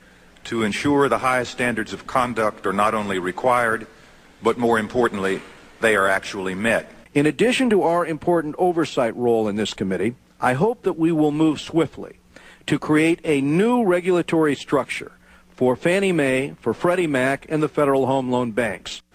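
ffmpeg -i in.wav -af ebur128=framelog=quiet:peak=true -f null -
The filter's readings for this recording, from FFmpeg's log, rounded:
Integrated loudness:
  I:         -20.7 LUFS
  Threshold: -31.1 LUFS
Loudness range:
  LRA:         1.7 LU
  Threshold: -41.0 LUFS
  LRA low:   -21.9 LUFS
  LRA high:  -20.2 LUFS
True peak:
  Peak:       -4.5 dBFS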